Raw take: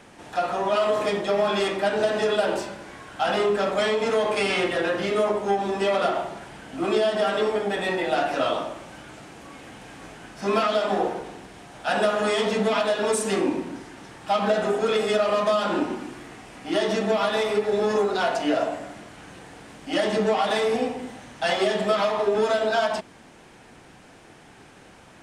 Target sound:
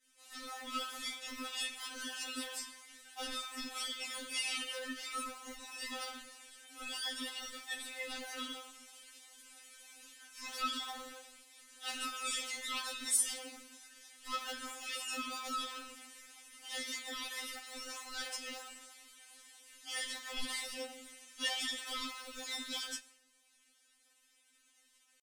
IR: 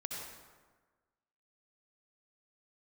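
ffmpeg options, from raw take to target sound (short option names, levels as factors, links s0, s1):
-filter_complex "[0:a]aderivative,asetrate=45392,aresample=44100,atempo=0.971532,acrossover=split=1000[s0][s1];[s0]acrusher=samples=37:mix=1:aa=0.000001:lfo=1:lforange=37:lforate=3.1[s2];[s2][s1]amix=inputs=2:normalize=0,agate=range=0.0224:threshold=0.002:ratio=3:detection=peak,asplit=2[s3][s4];[1:a]atrim=start_sample=2205[s5];[s4][s5]afir=irnorm=-1:irlink=0,volume=0.0944[s6];[s3][s6]amix=inputs=2:normalize=0,afftfilt=real='re*3.46*eq(mod(b,12),0)':imag='im*3.46*eq(mod(b,12),0)':win_size=2048:overlap=0.75,volume=1.12"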